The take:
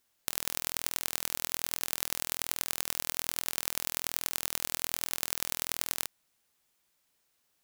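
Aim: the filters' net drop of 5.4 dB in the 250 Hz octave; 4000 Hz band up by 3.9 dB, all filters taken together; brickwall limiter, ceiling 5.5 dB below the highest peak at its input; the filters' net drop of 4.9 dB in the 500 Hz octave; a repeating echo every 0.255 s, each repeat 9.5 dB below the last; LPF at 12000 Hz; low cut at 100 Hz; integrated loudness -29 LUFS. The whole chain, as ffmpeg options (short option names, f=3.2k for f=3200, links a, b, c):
-af "highpass=100,lowpass=12k,equalizer=f=250:t=o:g=-5.5,equalizer=f=500:t=o:g=-5,equalizer=f=4k:t=o:g=5,alimiter=limit=-10dB:level=0:latency=1,aecho=1:1:255|510|765|1020:0.335|0.111|0.0365|0.012,volume=6.5dB"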